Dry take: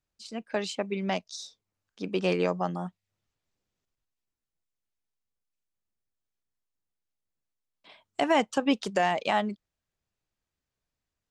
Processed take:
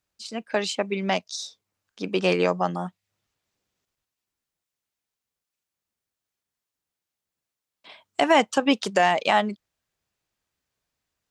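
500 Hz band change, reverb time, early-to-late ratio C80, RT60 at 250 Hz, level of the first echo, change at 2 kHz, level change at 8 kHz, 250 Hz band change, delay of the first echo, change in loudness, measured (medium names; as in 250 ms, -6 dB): +5.0 dB, no reverb, no reverb, no reverb, no echo, +6.5 dB, +7.0 dB, +3.5 dB, no echo, +5.0 dB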